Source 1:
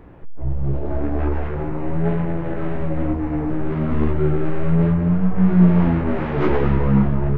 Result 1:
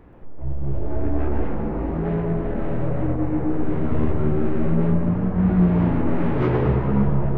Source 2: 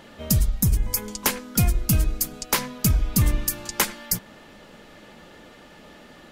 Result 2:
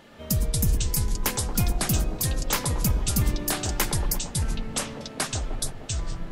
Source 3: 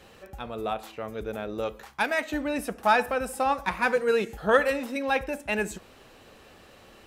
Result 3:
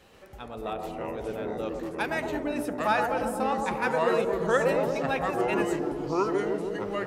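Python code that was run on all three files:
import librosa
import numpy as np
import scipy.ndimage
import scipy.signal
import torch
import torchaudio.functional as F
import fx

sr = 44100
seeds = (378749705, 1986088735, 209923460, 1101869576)

y = fx.echo_wet_bandpass(x, sr, ms=115, feedback_pct=68, hz=500.0, wet_db=-3.0)
y = fx.echo_pitch(y, sr, ms=130, semitones=-5, count=2, db_per_echo=-3.0)
y = y * librosa.db_to_amplitude(-4.5)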